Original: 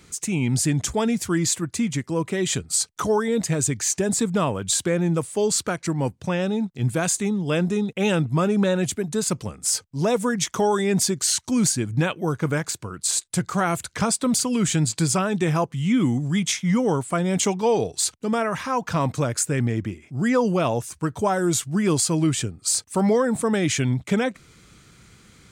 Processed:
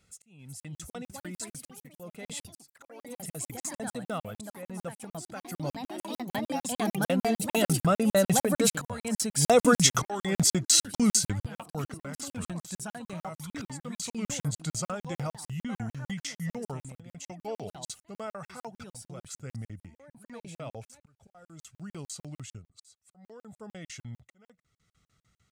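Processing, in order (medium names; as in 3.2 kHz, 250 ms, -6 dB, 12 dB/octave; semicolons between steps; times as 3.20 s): Doppler pass-by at 9.70 s, 21 m/s, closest 19 m; comb 1.5 ms, depth 53%; slow attack 634 ms; ever faster or slower copies 391 ms, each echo +3 st, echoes 3, each echo -6 dB; crackling interface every 0.15 s, samples 2048, zero, from 0.60 s; trim +3.5 dB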